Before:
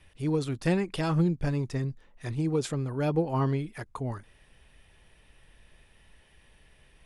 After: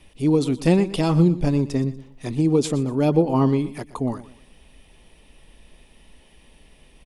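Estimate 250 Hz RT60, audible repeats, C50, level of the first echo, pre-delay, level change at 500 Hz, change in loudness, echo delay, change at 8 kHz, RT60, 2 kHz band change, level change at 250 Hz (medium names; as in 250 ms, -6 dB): no reverb, 2, no reverb, -16.5 dB, no reverb, +8.5 dB, +8.5 dB, 120 ms, +8.0 dB, no reverb, +2.5 dB, +10.0 dB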